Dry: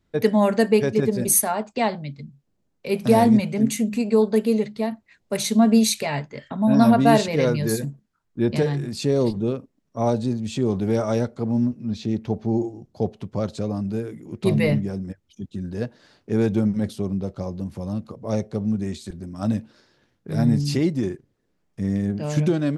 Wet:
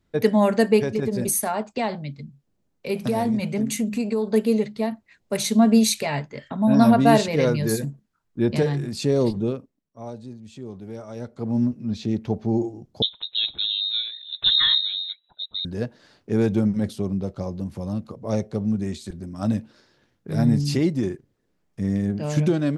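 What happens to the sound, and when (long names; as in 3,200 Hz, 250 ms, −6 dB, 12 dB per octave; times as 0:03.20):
0:00.81–0:04.32: downward compressor, threshold −19 dBFS
0:09.42–0:11.62: duck −14.5 dB, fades 0.47 s
0:13.02–0:15.65: voice inversion scrambler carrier 3,900 Hz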